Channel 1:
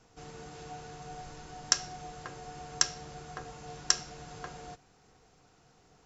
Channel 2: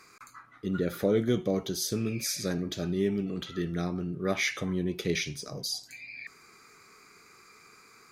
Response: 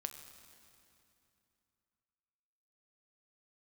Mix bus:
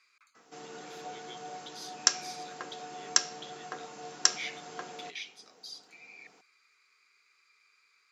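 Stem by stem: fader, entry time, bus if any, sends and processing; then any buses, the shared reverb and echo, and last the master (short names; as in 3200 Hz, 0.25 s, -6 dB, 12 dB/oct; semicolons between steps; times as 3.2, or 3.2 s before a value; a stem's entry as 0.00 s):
+2.0 dB, 0.35 s, no send, dry
-5.0 dB, 0.00 s, no send, band-pass 3100 Hz, Q 1.8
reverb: off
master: HPF 210 Hz 24 dB/oct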